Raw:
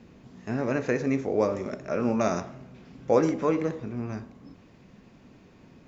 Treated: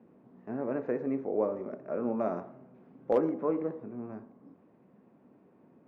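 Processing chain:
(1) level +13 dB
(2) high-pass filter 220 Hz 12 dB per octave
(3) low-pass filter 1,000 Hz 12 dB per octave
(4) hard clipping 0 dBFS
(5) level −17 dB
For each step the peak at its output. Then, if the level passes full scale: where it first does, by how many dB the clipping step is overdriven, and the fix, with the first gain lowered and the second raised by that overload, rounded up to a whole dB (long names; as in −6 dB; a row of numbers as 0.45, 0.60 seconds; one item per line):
+5.0, +4.0, +3.5, 0.0, −17.0 dBFS
step 1, 3.5 dB
step 1 +9 dB, step 5 −13 dB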